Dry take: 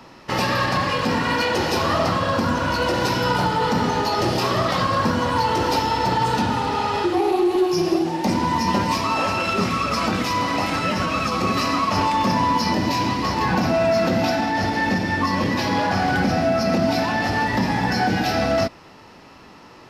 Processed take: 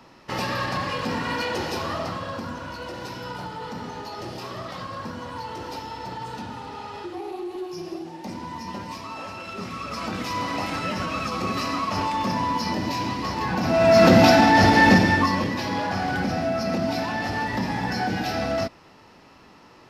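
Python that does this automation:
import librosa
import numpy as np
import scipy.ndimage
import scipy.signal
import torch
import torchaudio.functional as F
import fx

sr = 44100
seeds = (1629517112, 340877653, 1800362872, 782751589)

y = fx.gain(x, sr, db=fx.line((1.54, -6.0), (2.77, -14.0), (9.46, -14.0), (10.39, -5.5), (13.57, -5.5), (14.04, 6.5), (14.96, 6.5), (15.53, -5.5)))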